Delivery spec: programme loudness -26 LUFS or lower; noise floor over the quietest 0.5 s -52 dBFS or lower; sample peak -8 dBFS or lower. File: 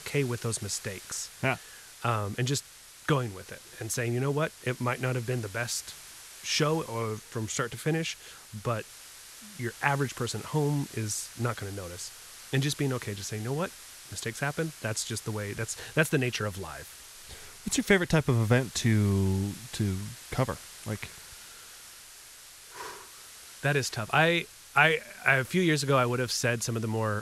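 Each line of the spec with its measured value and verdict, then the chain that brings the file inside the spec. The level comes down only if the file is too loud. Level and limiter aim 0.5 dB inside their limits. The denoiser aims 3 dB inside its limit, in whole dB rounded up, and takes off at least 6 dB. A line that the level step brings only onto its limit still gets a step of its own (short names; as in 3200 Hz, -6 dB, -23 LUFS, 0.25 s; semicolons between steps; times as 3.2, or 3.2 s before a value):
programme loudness -29.5 LUFS: OK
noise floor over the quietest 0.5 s -50 dBFS: fail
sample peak -10.0 dBFS: OK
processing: denoiser 6 dB, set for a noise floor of -50 dBFS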